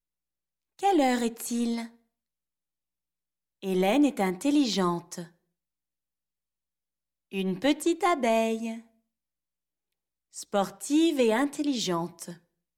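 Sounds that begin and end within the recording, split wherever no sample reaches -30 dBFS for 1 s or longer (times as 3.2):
3.63–5.21
7.34–8.74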